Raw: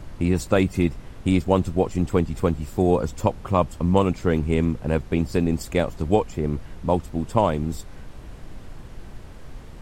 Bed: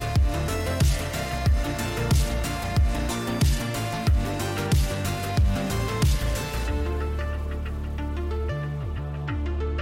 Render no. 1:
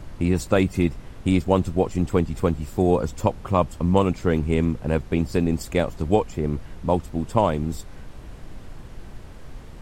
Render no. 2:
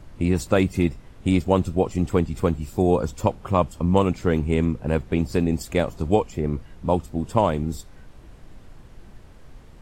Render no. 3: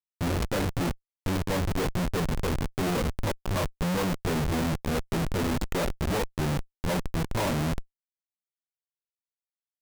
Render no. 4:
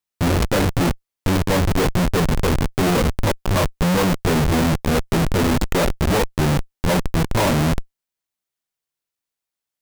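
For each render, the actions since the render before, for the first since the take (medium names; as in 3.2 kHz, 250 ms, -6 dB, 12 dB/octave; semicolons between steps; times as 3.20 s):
no audible change
noise print and reduce 6 dB
chorus 1 Hz, delay 16.5 ms, depth 4.5 ms; Schmitt trigger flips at -31 dBFS
trim +9.5 dB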